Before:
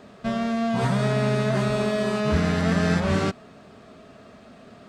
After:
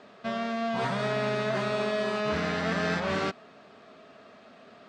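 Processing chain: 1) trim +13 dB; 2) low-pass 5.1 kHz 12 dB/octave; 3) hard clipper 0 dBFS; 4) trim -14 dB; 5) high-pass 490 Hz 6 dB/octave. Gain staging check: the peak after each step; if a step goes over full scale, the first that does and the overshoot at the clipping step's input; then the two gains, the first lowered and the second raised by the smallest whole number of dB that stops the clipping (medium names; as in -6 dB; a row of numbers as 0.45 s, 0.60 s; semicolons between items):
+3.0 dBFS, +3.0 dBFS, 0.0 dBFS, -14.0 dBFS, -16.0 dBFS; step 1, 3.0 dB; step 1 +10 dB, step 4 -11 dB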